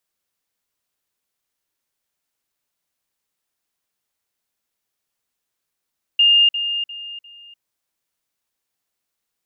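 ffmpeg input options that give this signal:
-f lavfi -i "aevalsrc='pow(10,(-10-10*floor(t/0.35))/20)*sin(2*PI*2820*t)*clip(min(mod(t,0.35),0.3-mod(t,0.35))/0.005,0,1)':d=1.4:s=44100"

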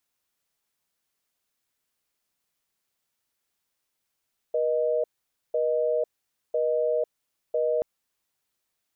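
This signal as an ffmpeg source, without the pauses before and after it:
-f lavfi -i "aevalsrc='0.0596*(sin(2*PI*480*t)+sin(2*PI*620*t))*clip(min(mod(t,1),0.5-mod(t,1))/0.005,0,1)':d=3.28:s=44100"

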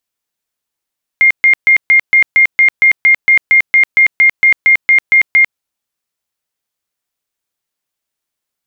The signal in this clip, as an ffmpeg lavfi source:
-f lavfi -i "aevalsrc='0.631*sin(2*PI*2120*mod(t,0.23))*lt(mod(t,0.23),203/2120)':d=4.37:s=44100"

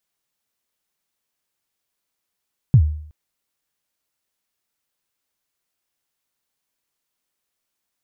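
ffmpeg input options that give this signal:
-f lavfi -i "aevalsrc='0.562*pow(10,-3*t/0.6)*sin(2*PI*(150*0.074/log(76/150)*(exp(log(76/150)*min(t,0.074)/0.074)-1)+76*max(t-0.074,0)))':d=0.37:s=44100"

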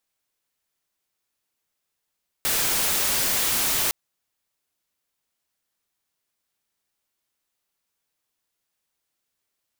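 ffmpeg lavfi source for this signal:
-f lavfi -i "anoisesrc=c=white:a=0.123:d=1.46:r=44100:seed=1"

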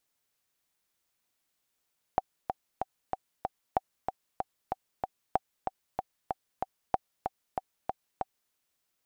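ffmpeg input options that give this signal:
-f lavfi -i "aevalsrc='pow(10,(-11-6*gte(mod(t,5*60/189),60/189))/20)*sin(2*PI*762*mod(t,60/189))*exp(-6.91*mod(t,60/189)/0.03)':d=6.34:s=44100"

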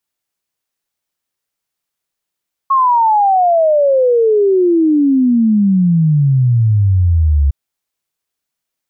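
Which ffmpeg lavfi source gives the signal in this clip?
-f lavfi -i "aevalsrc='0.398*clip(min(t,4.81-t)/0.01,0,1)*sin(2*PI*1100*4.81/log(68/1100)*(exp(log(68/1100)*t/4.81)-1))':d=4.81:s=44100"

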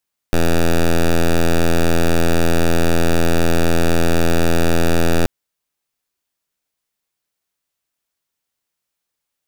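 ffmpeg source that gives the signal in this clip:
-f lavfi -i "aevalsrc='0.237*(2*lt(mod(83.9*t,1),0.08)-1)':d=4.93:s=44100"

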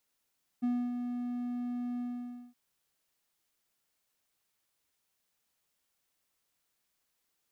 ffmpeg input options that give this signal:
-f lavfi -i "aevalsrc='0.0596*(1-4*abs(mod(244*t+0.25,1)-0.5))':d=1.919:s=44100,afade=t=in:d=0.019,afade=t=out:st=0.019:d=0.273:silence=0.473,afade=t=out:st=1.38:d=0.539"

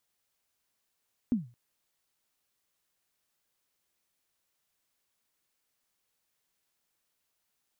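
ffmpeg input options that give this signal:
-f lavfi -i "aevalsrc='0.1*pow(10,-3*t/0.33)*sin(2*PI*(260*0.146/log(120/260)*(exp(log(120/260)*min(t,0.146)/0.146)-1)+120*max(t-0.146,0)))':d=0.22:s=44100"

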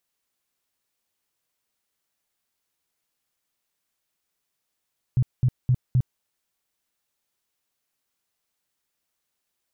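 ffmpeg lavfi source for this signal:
-f lavfi -i "aevalsrc='0.168*sin(2*PI*126*mod(t,0.26))*lt(mod(t,0.26),7/126)':d=1.04:s=44100"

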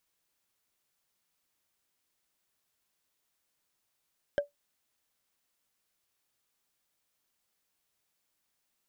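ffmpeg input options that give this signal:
-f lavfi -i "aevalsrc='0.1*pow(10,-3*t/0.14)*sin(2*PI*576*t)+0.0398*pow(10,-3*t/0.041)*sin(2*PI*1588*t)+0.0158*pow(10,-3*t/0.018)*sin(2*PI*3112.7*t)+0.00631*pow(10,-3*t/0.01)*sin(2*PI*5145.4*t)+0.00251*pow(10,-3*t/0.006)*sin(2*PI*7683.8*t)':d=0.45:s=44100"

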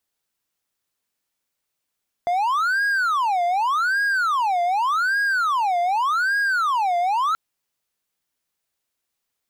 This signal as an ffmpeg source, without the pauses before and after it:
-f lavfi -i "aevalsrc='0.158*(1-4*abs(mod((1167.5*t-472.5/(2*PI*0.85)*sin(2*PI*0.85*t))+0.25,1)-0.5))':d=5.08:s=44100"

